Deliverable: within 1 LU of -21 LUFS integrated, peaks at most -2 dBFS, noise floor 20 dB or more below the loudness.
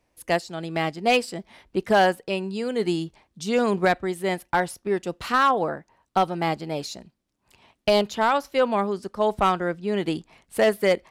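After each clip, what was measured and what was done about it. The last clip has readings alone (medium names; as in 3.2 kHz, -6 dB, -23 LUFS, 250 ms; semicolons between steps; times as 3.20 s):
clipped samples 0.5%; clipping level -12.0 dBFS; loudness -24.5 LUFS; peak level -12.0 dBFS; loudness target -21.0 LUFS
-> clip repair -12 dBFS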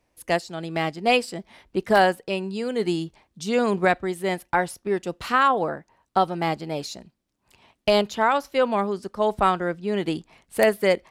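clipped samples 0.0%; loudness -24.0 LUFS; peak level -3.0 dBFS; loudness target -21.0 LUFS
-> trim +3 dB; peak limiter -2 dBFS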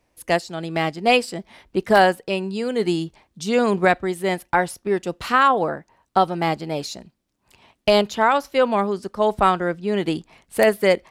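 loudness -21.0 LUFS; peak level -2.0 dBFS; noise floor -71 dBFS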